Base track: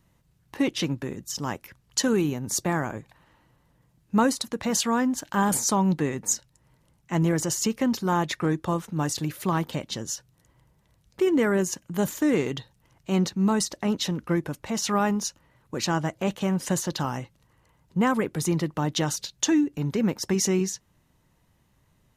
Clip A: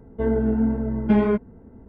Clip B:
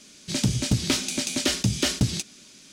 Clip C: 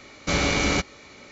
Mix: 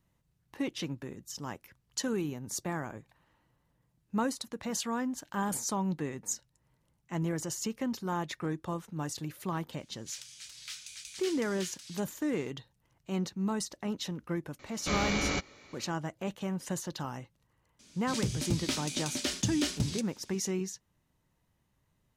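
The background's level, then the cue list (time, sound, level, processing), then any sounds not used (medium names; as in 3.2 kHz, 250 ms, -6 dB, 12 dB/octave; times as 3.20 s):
base track -9.5 dB
9.78 s: add B -16.5 dB + high-pass 1.4 kHz 24 dB/octave
14.59 s: add C -8.5 dB
17.79 s: add B -9 dB
not used: A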